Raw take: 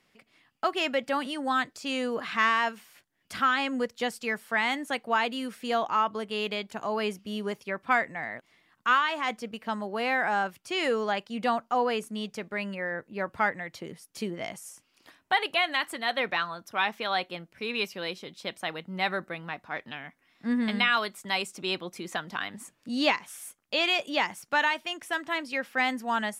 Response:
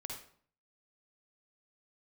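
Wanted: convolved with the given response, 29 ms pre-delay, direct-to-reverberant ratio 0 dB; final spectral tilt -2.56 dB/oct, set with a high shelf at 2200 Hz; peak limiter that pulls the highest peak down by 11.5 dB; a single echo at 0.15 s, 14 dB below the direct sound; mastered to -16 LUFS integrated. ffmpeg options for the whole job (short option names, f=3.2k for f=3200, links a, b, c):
-filter_complex "[0:a]highshelf=f=2.2k:g=7.5,alimiter=limit=-19.5dB:level=0:latency=1,aecho=1:1:150:0.2,asplit=2[a][b];[1:a]atrim=start_sample=2205,adelay=29[c];[b][c]afir=irnorm=-1:irlink=0,volume=2dB[d];[a][d]amix=inputs=2:normalize=0,volume=12dB"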